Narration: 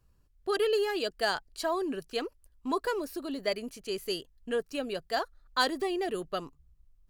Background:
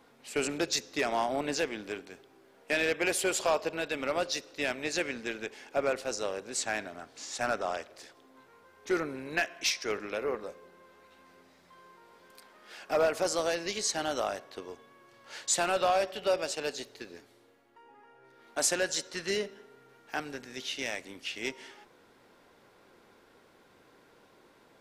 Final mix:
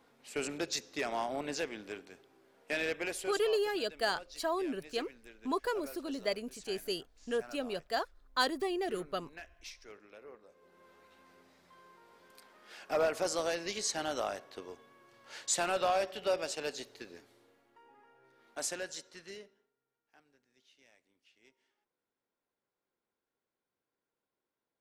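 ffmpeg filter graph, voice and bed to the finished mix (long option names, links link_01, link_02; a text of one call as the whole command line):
ffmpeg -i stem1.wav -i stem2.wav -filter_complex "[0:a]adelay=2800,volume=-3dB[link_01];[1:a]volume=10.5dB,afade=type=out:start_time=2.89:duration=0.57:silence=0.199526,afade=type=in:start_time=10.48:duration=0.4:silence=0.158489,afade=type=out:start_time=17.61:duration=2.12:silence=0.0446684[link_02];[link_01][link_02]amix=inputs=2:normalize=0" out.wav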